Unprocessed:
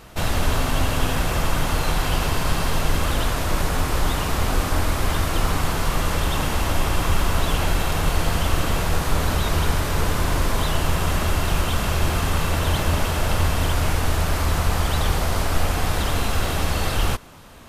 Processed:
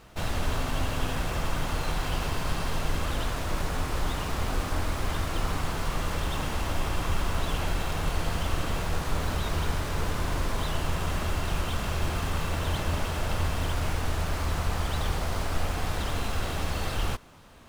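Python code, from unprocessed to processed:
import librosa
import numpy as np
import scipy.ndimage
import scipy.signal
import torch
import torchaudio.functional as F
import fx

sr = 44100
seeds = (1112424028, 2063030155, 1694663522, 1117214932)

y = scipy.ndimage.median_filter(x, 3, mode='constant')
y = y * 10.0 ** (-7.5 / 20.0)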